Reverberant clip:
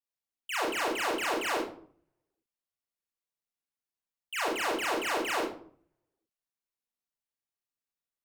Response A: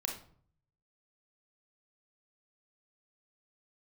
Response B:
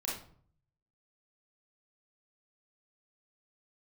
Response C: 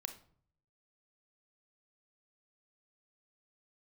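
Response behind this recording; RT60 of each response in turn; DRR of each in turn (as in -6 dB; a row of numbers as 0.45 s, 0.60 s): B; 0.55 s, 0.55 s, 0.55 s; 1.0 dB, -5.5 dB, 7.0 dB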